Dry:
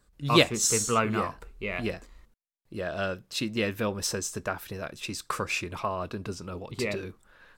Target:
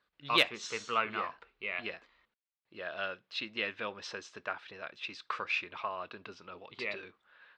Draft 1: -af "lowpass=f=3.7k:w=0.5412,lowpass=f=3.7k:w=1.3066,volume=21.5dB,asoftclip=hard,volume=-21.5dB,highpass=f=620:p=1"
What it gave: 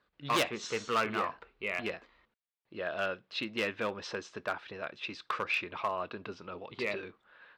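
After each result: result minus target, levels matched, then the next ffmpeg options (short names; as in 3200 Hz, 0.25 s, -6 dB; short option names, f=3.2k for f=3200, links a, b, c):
overloaded stage: distortion +24 dB; 500 Hz band +4.5 dB
-af "lowpass=f=3.7k:w=0.5412,lowpass=f=3.7k:w=1.3066,volume=9.5dB,asoftclip=hard,volume=-9.5dB,highpass=f=620:p=1"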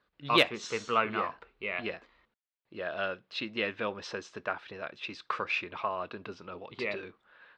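500 Hz band +3.5 dB
-af "lowpass=f=3.7k:w=0.5412,lowpass=f=3.7k:w=1.3066,volume=9.5dB,asoftclip=hard,volume=-9.5dB,highpass=f=1.6k:p=1"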